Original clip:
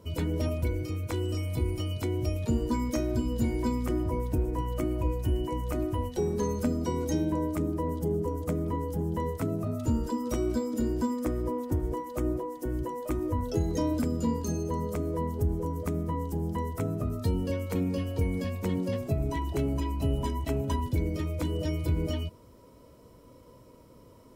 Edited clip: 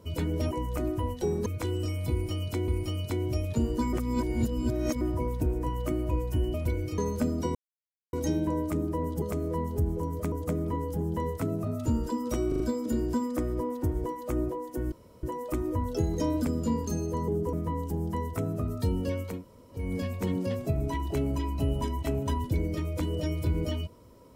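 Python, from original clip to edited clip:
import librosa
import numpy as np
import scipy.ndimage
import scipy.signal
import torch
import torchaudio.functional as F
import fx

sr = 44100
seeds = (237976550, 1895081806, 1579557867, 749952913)

y = fx.edit(x, sr, fx.swap(start_s=0.51, length_s=0.44, other_s=5.46, other_length_s=0.95),
    fx.repeat(start_s=1.6, length_s=0.57, count=2),
    fx.reverse_span(start_s=2.85, length_s=1.08),
    fx.insert_silence(at_s=6.98, length_s=0.58),
    fx.swap(start_s=8.07, length_s=0.25, other_s=14.85, other_length_s=1.1),
    fx.stutter(start_s=10.48, slice_s=0.04, count=4),
    fx.insert_room_tone(at_s=12.8, length_s=0.31),
    fx.room_tone_fill(start_s=17.75, length_s=0.49, crossfade_s=0.24), tone=tone)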